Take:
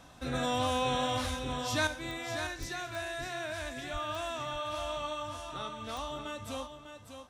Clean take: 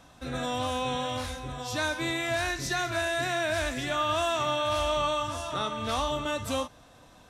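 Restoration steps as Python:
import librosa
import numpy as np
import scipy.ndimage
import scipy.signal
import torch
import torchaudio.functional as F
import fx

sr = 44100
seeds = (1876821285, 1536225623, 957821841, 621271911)

y = fx.fix_declick_ar(x, sr, threshold=10.0)
y = fx.highpass(y, sr, hz=140.0, slope=24, at=(2.59, 2.71), fade=0.02)
y = fx.highpass(y, sr, hz=140.0, slope=24, at=(3.92, 4.04), fade=0.02)
y = fx.fix_echo_inverse(y, sr, delay_ms=599, level_db=-8.5)
y = fx.gain(y, sr, db=fx.steps((0.0, 0.0), (1.87, 9.5)))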